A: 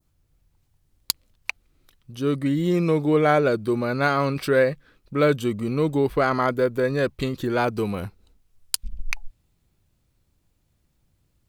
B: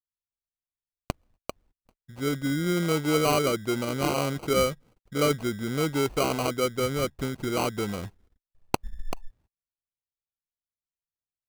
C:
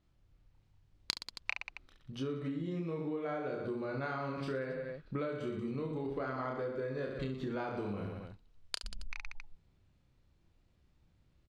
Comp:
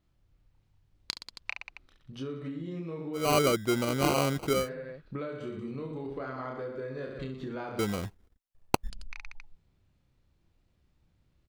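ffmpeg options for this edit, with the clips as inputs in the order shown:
-filter_complex "[1:a]asplit=2[a][b];[2:a]asplit=3[c][d][e];[c]atrim=end=3.37[f];[a]atrim=start=3.13:end=4.7[g];[d]atrim=start=4.46:end=7.792[h];[b]atrim=start=7.788:end=8.902[i];[e]atrim=start=8.898[j];[f][g]acrossfade=d=0.24:c1=tri:c2=tri[k];[k][h]acrossfade=d=0.24:c1=tri:c2=tri[l];[l][i]acrossfade=d=0.004:c1=hsin:c2=hsin[m];[m][j]acrossfade=d=0.004:c1=hsin:c2=hsin"

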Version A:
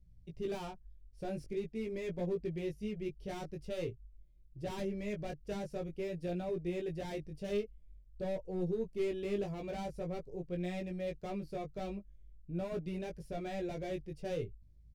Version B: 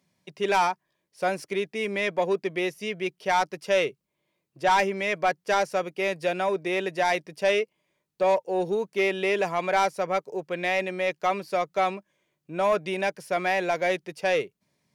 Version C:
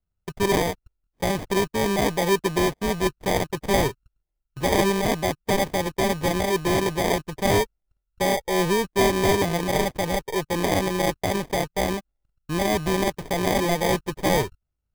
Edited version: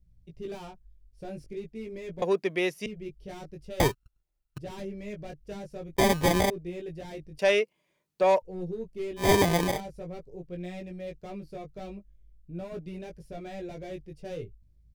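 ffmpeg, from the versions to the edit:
-filter_complex "[1:a]asplit=2[a][b];[2:a]asplit=3[c][d][e];[0:a]asplit=6[f][g][h][i][j][k];[f]atrim=end=2.222[l];[a]atrim=start=2.218:end=2.862[m];[g]atrim=start=2.858:end=3.802[n];[c]atrim=start=3.798:end=4.582[o];[h]atrim=start=4.578:end=5.962[p];[d]atrim=start=5.958:end=6.502[q];[i]atrim=start=6.498:end=7.392[r];[b]atrim=start=7.388:end=8.422[s];[j]atrim=start=8.418:end=9.32[t];[e]atrim=start=9.16:end=9.81[u];[k]atrim=start=9.65[v];[l][m]acrossfade=d=0.004:c1=hsin:c2=hsin[w];[w][n]acrossfade=d=0.004:c1=hsin:c2=hsin[x];[x][o]acrossfade=d=0.004:c1=hsin:c2=hsin[y];[y][p]acrossfade=d=0.004:c1=hsin:c2=hsin[z];[z][q]acrossfade=d=0.004:c1=hsin:c2=hsin[aa];[aa][r]acrossfade=d=0.004:c1=hsin:c2=hsin[ab];[ab][s]acrossfade=d=0.004:c1=hsin:c2=hsin[ac];[ac][t]acrossfade=d=0.004:c1=hsin:c2=hsin[ad];[ad][u]acrossfade=d=0.16:c1=tri:c2=tri[ae];[ae][v]acrossfade=d=0.16:c1=tri:c2=tri"

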